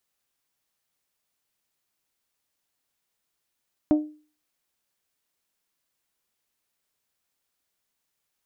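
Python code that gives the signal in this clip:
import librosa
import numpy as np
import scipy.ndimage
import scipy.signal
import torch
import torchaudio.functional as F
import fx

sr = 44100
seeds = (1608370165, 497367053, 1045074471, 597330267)

y = fx.strike_glass(sr, length_s=0.89, level_db=-13, body='bell', hz=303.0, decay_s=0.39, tilt_db=9.5, modes=5)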